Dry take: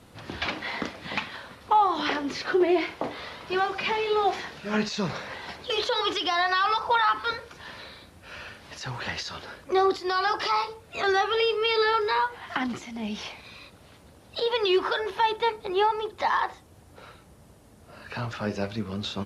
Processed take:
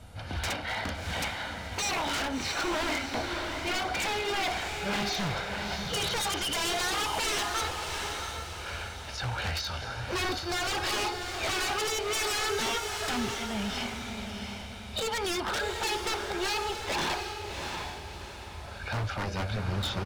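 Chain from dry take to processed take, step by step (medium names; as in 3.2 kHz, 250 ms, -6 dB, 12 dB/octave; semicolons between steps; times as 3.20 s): resonant low shelf 110 Hz +7 dB, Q 1.5; comb 1.3 ms, depth 49%; wavefolder -26 dBFS; echo that smears into a reverb 670 ms, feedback 42%, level -5 dB; speed mistake 25 fps video run at 24 fps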